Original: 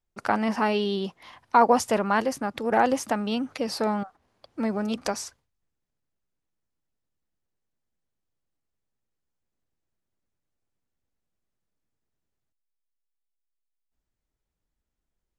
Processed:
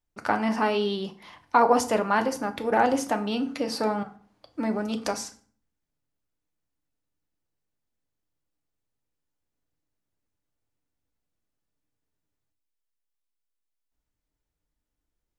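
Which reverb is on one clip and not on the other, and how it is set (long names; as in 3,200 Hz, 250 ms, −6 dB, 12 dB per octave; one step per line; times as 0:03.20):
feedback delay network reverb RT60 0.47 s, low-frequency decay 1.35×, high-frequency decay 0.75×, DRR 6.5 dB
level −1 dB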